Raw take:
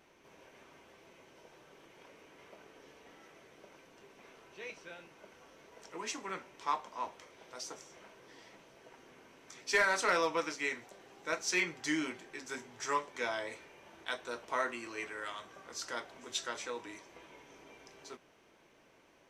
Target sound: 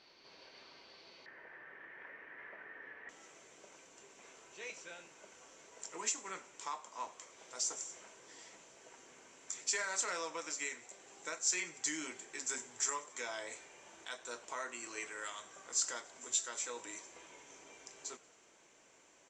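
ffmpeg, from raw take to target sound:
-filter_complex "[0:a]lowshelf=f=270:g=-8,alimiter=level_in=6dB:limit=-24dB:level=0:latency=1:release=449,volume=-6dB,asetnsamples=n=441:p=0,asendcmd='1.26 lowpass f 1800;3.09 lowpass f 7300',lowpass=f=4.5k:t=q:w=12,asplit=6[a][b][c][d][e][f];[b]adelay=92,afreqshift=38,volume=-21.5dB[g];[c]adelay=184,afreqshift=76,volume=-25.7dB[h];[d]adelay=276,afreqshift=114,volume=-29.8dB[i];[e]adelay=368,afreqshift=152,volume=-34dB[j];[f]adelay=460,afreqshift=190,volume=-38.1dB[k];[a][g][h][i][j][k]amix=inputs=6:normalize=0,volume=-1dB"

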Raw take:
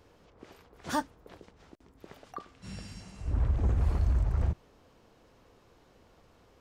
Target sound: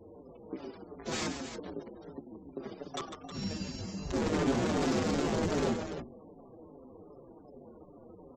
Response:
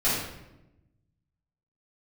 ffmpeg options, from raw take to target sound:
-filter_complex "[0:a]lowpass=6.1k,bass=f=250:g=-3,treble=f=4k:g=13,aresample=16000,aeval=exprs='(mod(39.8*val(0)+1,2)-1)/39.8':c=same,aresample=44100,bandreject=f=60:t=h:w=6,bandreject=f=120:t=h:w=6,bandreject=f=180:t=h:w=6,bandreject=f=240:t=h:w=6,bandreject=f=300:t=h:w=6,bandreject=f=360:t=h:w=6,aecho=1:1:110.8|236.2:0.398|0.316,areverse,acompressor=mode=upward:threshold=-57dB:ratio=2.5,areverse,equalizer=f=270:w=0.47:g=14,atempo=0.79,afftfilt=real='re*gte(hypot(re,im),0.00251)':imag='im*gte(hypot(re,im),0.00251)':win_size=1024:overlap=0.75,asoftclip=type=tanh:threshold=-22.5dB,asplit=2[a][b];[b]adelay=5.7,afreqshift=-2.6[c];[a][c]amix=inputs=2:normalize=1,volume=3dB"

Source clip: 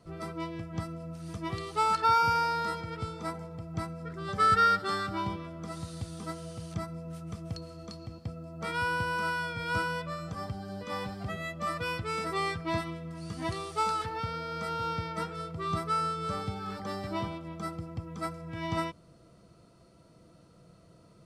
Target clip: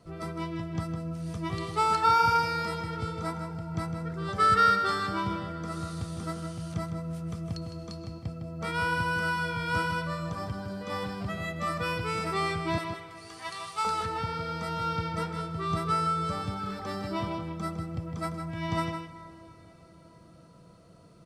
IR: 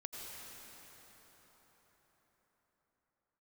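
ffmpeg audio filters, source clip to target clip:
-filter_complex "[0:a]asettb=1/sr,asplit=3[a][b][c];[a]atrim=end=12.784[d];[b]atrim=start=12.78:end=13.85,asetpts=PTS-STARTPTS,afade=t=in:d=0.004:c=qsin,afade=t=out:st=1.066:d=0.004:c=qsin,highpass=1k[e];[c]atrim=start=13.846[f];[d][e]acrossfade=d=0.004:c1=hsin:c2=qsin[g];[g][f]acrossfade=d=0.004:c1=qsin:c2=hsin,asplit=2[h][i];[i]adelay=157.4,volume=-7dB,highshelf=f=4k:g=-3.54[j];[h][j]amix=inputs=2:normalize=0,asplit=2[k][l];[1:a]atrim=start_sample=2205[m];[l][m]afir=irnorm=-1:irlink=0,volume=-10.5dB[n];[k][n]amix=inputs=2:normalize=0"

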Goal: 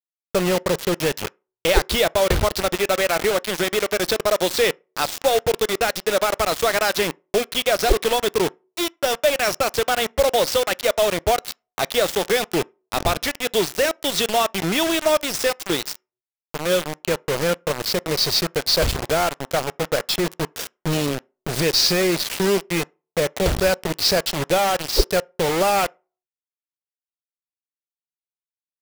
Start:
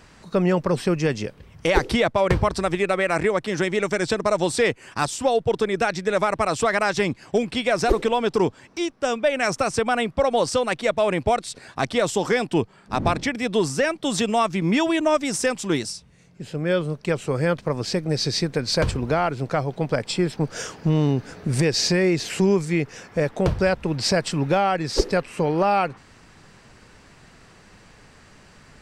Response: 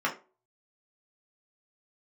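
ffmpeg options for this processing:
-filter_complex "[0:a]equalizer=f=125:t=o:w=1:g=-9,equalizer=f=250:t=o:w=1:g=-11,equalizer=f=1k:t=o:w=1:g=-7,equalizer=f=2k:t=o:w=1:g=-6,equalizer=f=4k:t=o:w=1:g=5,equalizer=f=8k:t=o:w=1:g=-10,acrusher=bits=4:mix=0:aa=0.000001,asplit=2[a][b];[1:a]atrim=start_sample=2205[c];[b][c]afir=irnorm=-1:irlink=0,volume=-30dB[d];[a][d]amix=inputs=2:normalize=0,volume=6dB"

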